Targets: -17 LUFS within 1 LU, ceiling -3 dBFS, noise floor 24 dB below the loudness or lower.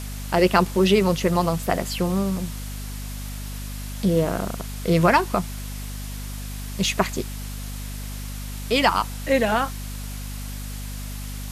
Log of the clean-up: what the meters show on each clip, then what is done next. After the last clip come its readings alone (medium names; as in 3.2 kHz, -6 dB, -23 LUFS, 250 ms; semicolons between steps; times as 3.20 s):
hum 50 Hz; highest harmonic 250 Hz; hum level -30 dBFS; noise floor -32 dBFS; noise floor target -49 dBFS; loudness -24.5 LUFS; peak level -3.5 dBFS; loudness target -17.0 LUFS
-> de-hum 50 Hz, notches 5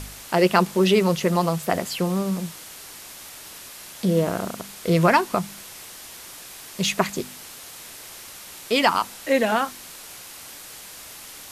hum not found; noise floor -41 dBFS; noise floor target -47 dBFS
-> noise reduction 6 dB, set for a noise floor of -41 dBFS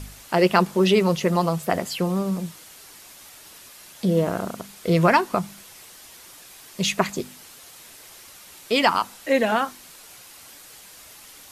noise floor -46 dBFS; noise floor target -47 dBFS
-> noise reduction 6 dB, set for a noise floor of -46 dBFS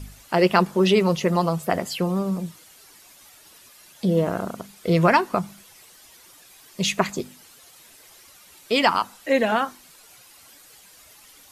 noise floor -51 dBFS; loudness -22.5 LUFS; peak level -4.0 dBFS; loudness target -17.0 LUFS
-> trim +5.5 dB; peak limiter -3 dBFS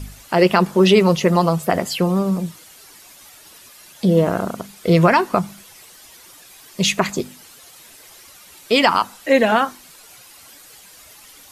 loudness -17.5 LUFS; peak level -3.0 dBFS; noise floor -45 dBFS